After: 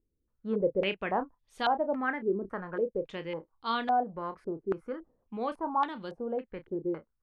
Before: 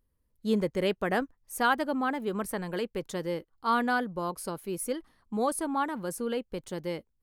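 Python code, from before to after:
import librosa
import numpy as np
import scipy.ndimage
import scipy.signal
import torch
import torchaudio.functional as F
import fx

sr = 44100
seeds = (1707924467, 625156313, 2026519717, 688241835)

y = fx.doubler(x, sr, ms=31.0, db=-11.0)
y = fx.filter_held_lowpass(y, sr, hz=3.6, low_hz=370.0, high_hz=3600.0)
y = y * 10.0 ** (-6.0 / 20.0)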